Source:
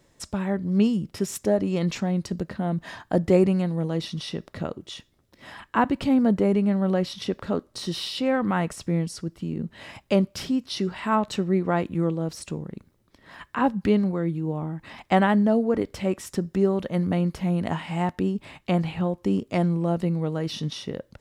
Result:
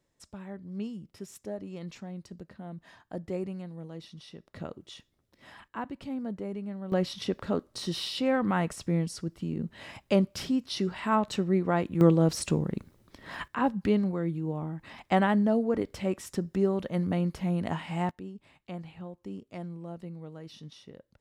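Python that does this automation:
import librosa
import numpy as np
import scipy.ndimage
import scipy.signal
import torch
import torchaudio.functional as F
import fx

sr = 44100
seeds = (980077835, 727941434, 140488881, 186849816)

y = fx.gain(x, sr, db=fx.steps((0.0, -15.5), (4.54, -8.5), (5.68, -15.0), (6.92, -3.0), (12.01, 5.0), (13.48, -4.5), (18.11, -16.5)))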